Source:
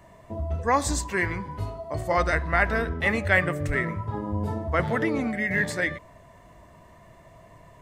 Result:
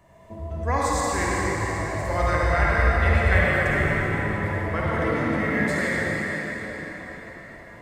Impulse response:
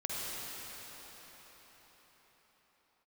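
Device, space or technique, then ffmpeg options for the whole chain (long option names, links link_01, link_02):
cathedral: -filter_complex "[1:a]atrim=start_sample=2205[link_01];[0:a][link_01]afir=irnorm=-1:irlink=0,asettb=1/sr,asplit=3[link_02][link_03][link_04];[link_02]atrim=end=1.874[link_05];[link_03]atrim=start=1.87:end=3.44,asetpts=PTS-STARTPTS,afade=type=in:duration=0.004:curve=qsin,afade=type=out:start_time=1.566:duration=0.004:curve=qsin,asubboost=boost=10.5:cutoff=100[link_06];[link_04]atrim=start=3.436[link_07];[link_05][link_06]acrossfade=duration=0.004:curve1=hsin:curve2=qsin[link_08];[link_08][link_07]acrossfade=duration=0.004:curve1=qsin:curve2=hsin,volume=-2.5dB"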